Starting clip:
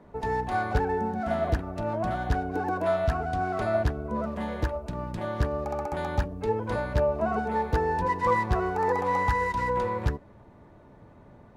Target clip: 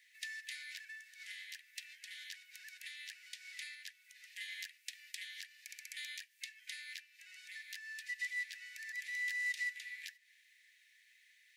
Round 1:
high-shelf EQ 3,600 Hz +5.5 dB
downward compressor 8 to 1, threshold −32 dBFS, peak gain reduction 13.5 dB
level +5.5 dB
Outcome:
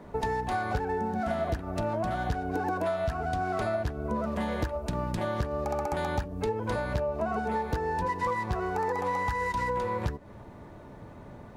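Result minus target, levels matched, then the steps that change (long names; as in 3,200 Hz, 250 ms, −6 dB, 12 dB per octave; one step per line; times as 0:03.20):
2,000 Hz band −9.0 dB
add after downward compressor: Butterworth high-pass 1,800 Hz 96 dB per octave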